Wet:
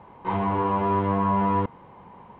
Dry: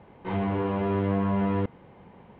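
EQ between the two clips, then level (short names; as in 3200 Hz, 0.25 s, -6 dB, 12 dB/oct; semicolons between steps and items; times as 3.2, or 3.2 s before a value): bell 1000 Hz +12.5 dB 0.53 oct; 0.0 dB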